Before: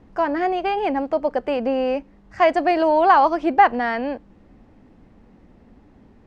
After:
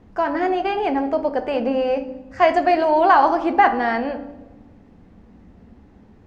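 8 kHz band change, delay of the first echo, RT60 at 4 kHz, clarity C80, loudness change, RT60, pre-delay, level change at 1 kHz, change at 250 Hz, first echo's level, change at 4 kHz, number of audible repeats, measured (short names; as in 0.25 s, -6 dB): n/a, none, 0.80 s, 15.0 dB, +0.5 dB, 1.2 s, 3 ms, +0.5 dB, +1.0 dB, none, +0.5 dB, none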